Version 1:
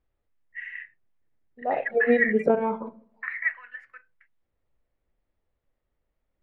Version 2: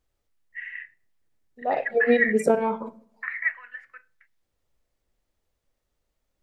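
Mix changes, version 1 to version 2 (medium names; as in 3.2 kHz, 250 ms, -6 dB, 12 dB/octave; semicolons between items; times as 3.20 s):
first voice: send on; second voice: remove distance through air 380 m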